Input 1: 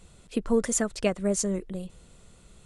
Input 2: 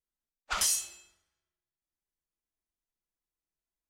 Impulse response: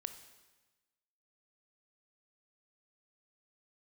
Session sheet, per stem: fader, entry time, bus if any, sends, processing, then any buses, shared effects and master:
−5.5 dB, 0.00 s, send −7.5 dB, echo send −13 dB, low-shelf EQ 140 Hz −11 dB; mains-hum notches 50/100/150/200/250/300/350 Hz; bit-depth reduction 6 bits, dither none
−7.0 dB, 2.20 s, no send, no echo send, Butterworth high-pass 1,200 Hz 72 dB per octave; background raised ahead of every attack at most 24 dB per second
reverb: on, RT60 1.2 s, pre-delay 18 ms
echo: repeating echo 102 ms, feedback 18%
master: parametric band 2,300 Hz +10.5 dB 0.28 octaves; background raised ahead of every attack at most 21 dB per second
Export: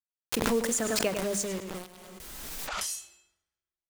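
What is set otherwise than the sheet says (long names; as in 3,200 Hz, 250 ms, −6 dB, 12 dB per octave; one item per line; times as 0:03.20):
stem 2: missing Butterworth high-pass 1,200 Hz 72 dB per octave
master: missing parametric band 2,300 Hz +10.5 dB 0.28 octaves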